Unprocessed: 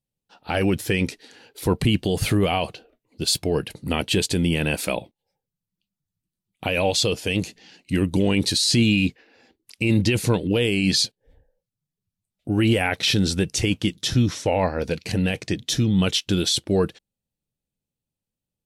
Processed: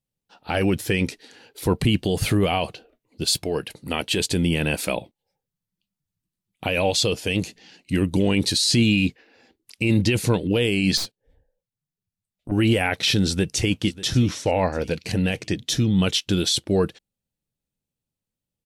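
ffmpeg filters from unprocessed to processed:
-filter_complex "[0:a]asettb=1/sr,asplit=3[a][b][c];[a]atrim=end=3.444[d];[b]atrim=start=3.44:end=4.2,asetpts=PTS-STARTPTS,afade=t=in:d=0.004:c=qsin,afade=t=out:st=0.756:d=0.004:c=qsin,lowshelf=f=270:g=-8[e];[c]atrim=start=4.196[f];[d][e]acrossfade=d=0.004:c1=hsin:c2=qsin[g];[g][f]acrossfade=d=0.004:c1=qsin:c2=hsin,asettb=1/sr,asplit=3[h][i][j];[h]atrim=end=10.974[k];[i]atrim=start=10.97:end=12.52,asetpts=PTS-STARTPTS,afade=t=in:d=0.004:c=qsin,afade=t=out:st=1.546:d=0.004:c=qsin,aeval=exprs='(tanh(15.8*val(0)+0.75)-tanh(0.75))/15.8':c=same[l];[j]atrim=start=12.516[m];[k][l]acrossfade=d=0.004:c1=hsin:c2=qsin[n];[n][m]acrossfade=d=0.004:c1=qsin:c2=hsin,asplit=2[o][p];[p]afade=t=in:st=13.27:d=0.01,afade=t=out:st=13.72:d=0.01,aecho=0:1:590|1180|1770:0.133352|0.0533409|0.0213363[q];[o][q]amix=inputs=2:normalize=0"

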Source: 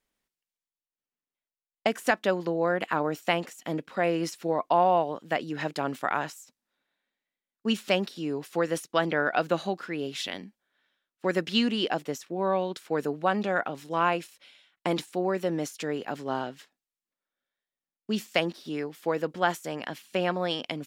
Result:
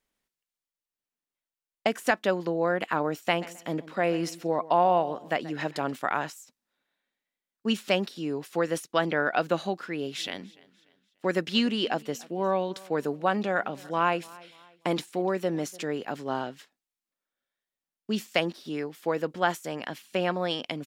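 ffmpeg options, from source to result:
-filter_complex "[0:a]asettb=1/sr,asplit=3[a][b][c];[a]atrim=end=3.144[d];[b]atrim=start=3.14:end=5.92,asetpts=PTS-STARTPTS,afade=t=in:d=0.004:c=qsin,afade=t=out:st=2.776:d=0.004:c=qsin,asplit=2[e][f];[f]adelay=132,lowpass=f=3.4k:p=1,volume=-17.5dB,asplit=2[g][h];[h]adelay=132,lowpass=f=3.4k:p=1,volume=0.29,asplit=2[i][j];[j]adelay=132,lowpass=f=3.4k:p=1,volume=0.29[k];[e][g][i][k]amix=inputs=4:normalize=0,atrim=end_sample=122598[l];[c]atrim=start=5.916[m];[d][l]acrossfade=d=0.004:c1=hsin:c2=qsin[n];[n][m]acrossfade=d=0.004:c1=qsin:c2=hsin,asplit=3[o][p][q];[o]afade=t=out:st=10.15:d=0.02[r];[p]aecho=1:1:293|586|879:0.0708|0.0269|0.0102,afade=t=in:st=10.15:d=0.02,afade=t=out:st=15.83:d=0.02[s];[q]afade=t=in:st=15.83:d=0.02[t];[r][s][t]amix=inputs=3:normalize=0"

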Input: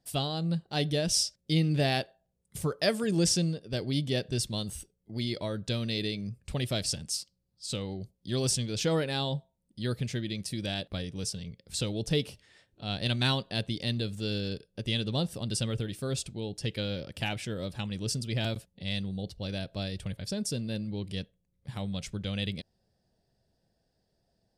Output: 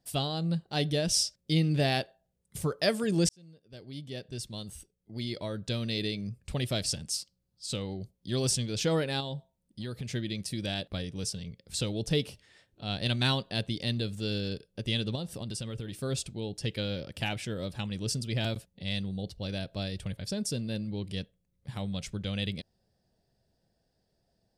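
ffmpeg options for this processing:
-filter_complex "[0:a]asettb=1/sr,asplit=3[a][b][c];[a]atrim=end=9.204[d];[b]atrim=start=9.2:end=10.1,asetpts=PTS-STARTPTS,afade=t=in:d=0.004:c=qsin,afade=t=out:st=0.896:d=0.004:c=qsin,acompressor=threshold=-32dB:ratio=6:attack=3.2:release=140:knee=1:detection=peak[e];[c]atrim=start=10.096[f];[d][e]acrossfade=d=0.004:c1=hsin:c2=qsin[g];[g][f]acrossfade=d=0.004:c1=qsin:c2=hsin,asettb=1/sr,asplit=3[h][i][j];[h]atrim=end=15.154[k];[i]atrim=start=15.15:end=15.99,asetpts=PTS-STARTPTS,afade=t=in:d=0.004:c=qsin,afade=t=out:st=0.836:d=0.004:c=qsin,acompressor=threshold=-33dB:ratio=4:attack=3.2:release=140:knee=1:detection=peak[l];[j]atrim=start=15.986[m];[k][l]acrossfade=d=0.004:c1=hsin:c2=qsin[n];[n][m]acrossfade=d=0.004:c1=qsin:c2=hsin,asplit=2[o][p];[o]atrim=end=3.29,asetpts=PTS-STARTPTS,afade=t=out:st=3.286:d=0.004:c=hsin[q];[p]atrim=start=3.29,asetpts=PTS-STARTPTS,afade=t=in:d=2.75[r];[q][r]concat=n=2:v=0:a=1"

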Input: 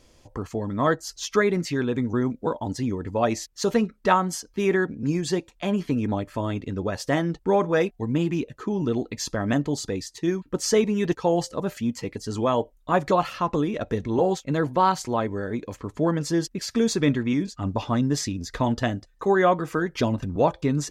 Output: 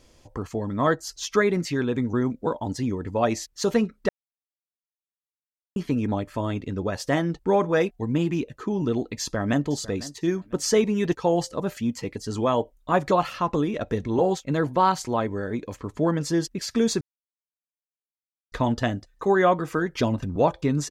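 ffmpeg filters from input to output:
-filter_complex "[0:a]asplit=2[a][b];[b]afade=t=in:st=9.2:d=0.01,afade=t=out:st=9.64:d=0.01,aecho=0:1:500|1000:0.133352|0.033338[c];[a][c]amix=inputs=2:normalize=0,asplit=5[d][e][f][g][h];[d]atrim=end=4.09,asetpts=PTS-STARTPTS,afade=t=out:st=4.086:d=0.004:c=hsin[i];[e]atrim=start=4.09:end=5.76,asetpts=PTS-STARTPTS,volume=0[j];[f]atrim=start=5.76:end=17.01,asetpts=PTS-STARTPTS,afade=t=in:d=0.004:c=hsin,afade=t=out:st=11.246:d=0.004:c=hsin[k];[g]atrim=start=17.01:end=18.52,asetpts=PTS-STARTPTS,volume=0[l];[h]atrim=start=18.52,asetpts=PTS-STARTPTS,afade=t=in:d=0.004:c=hsin[m];[i][j][k][l][m]concat=n=5:v=0:a=1"

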